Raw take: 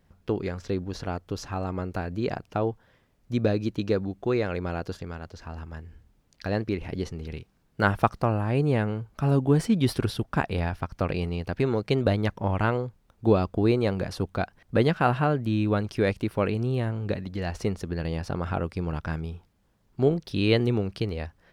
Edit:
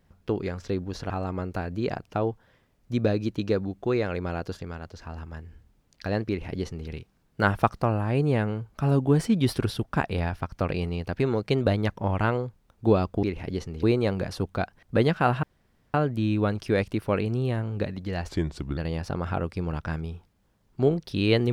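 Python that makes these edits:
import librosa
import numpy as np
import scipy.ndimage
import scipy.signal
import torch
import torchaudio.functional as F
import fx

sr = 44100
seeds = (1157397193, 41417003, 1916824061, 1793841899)

y = fx.edit(x, sr, fx.cut(start_s=1.1, length_s=0.4),
    fx.duplicate(start_s=6.68, length_s=0.6, to_s=13.63),
    fx.insert_room_tone(at_s=15.23, length_s=0.51),
    fx.speed_span(start_s=17.58, length_s=0.39, speed=0.81), tone=tone)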